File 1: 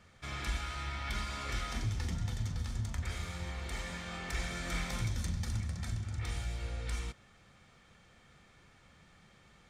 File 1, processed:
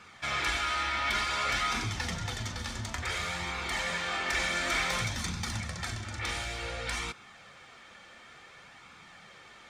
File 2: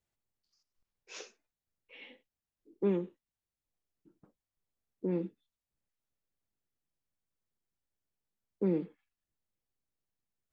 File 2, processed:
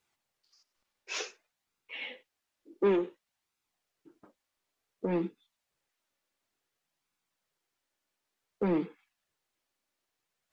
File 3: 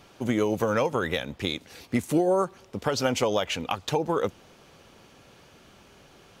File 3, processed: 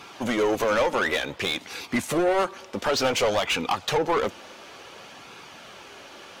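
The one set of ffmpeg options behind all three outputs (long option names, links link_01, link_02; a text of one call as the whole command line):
ffmpeg -i in.wav -filter_complex "[0:a]asplit=2[link_01][link_02];[link_02]highpass=frequency=720:poles=1,volume=23dB,asoftclip=type=tanh:threshold=-10.5dB[link_03];[link_01][link_03]amix=inputs=2:normalize=0,lowpass=frequency=4800:poles=1,volume=-6dB,flanger=delay=0.8:depth=2.7:regen=-49:speed=0.56:shape=sinusoidal" out.wav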